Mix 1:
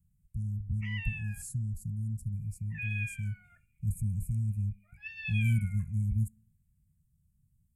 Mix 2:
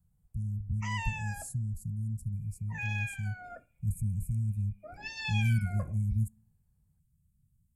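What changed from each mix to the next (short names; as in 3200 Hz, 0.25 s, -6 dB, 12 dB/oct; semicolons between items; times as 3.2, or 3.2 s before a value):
background: remove Butterworth band-pass 2400 Hz, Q 2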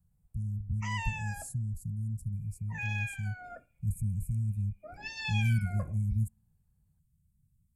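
speech: send -10.0 dB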